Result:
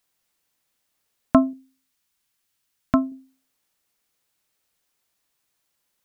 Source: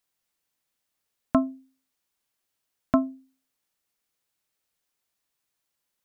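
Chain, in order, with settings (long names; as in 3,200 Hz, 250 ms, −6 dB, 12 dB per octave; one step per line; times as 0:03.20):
0:01.53–0:03.12: parametric band 540 Hz −7.5 dB 1.9 octaves
level +6 dB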